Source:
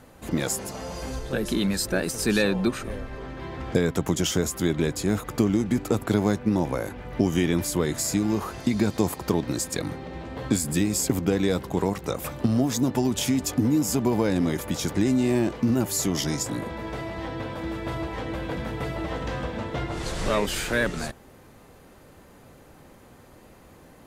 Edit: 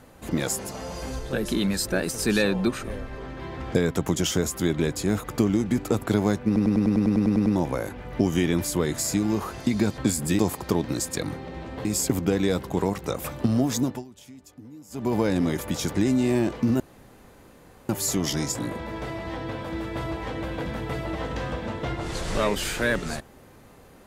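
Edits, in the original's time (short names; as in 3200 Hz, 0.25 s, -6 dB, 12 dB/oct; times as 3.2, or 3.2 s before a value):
6.46 stutter 0.10 s, 11 plays
10.44–10.85 move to 8.98
12.8–14.15 dip -22.5 dB, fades 0.25 s
15.8 insert room tone 1.09 s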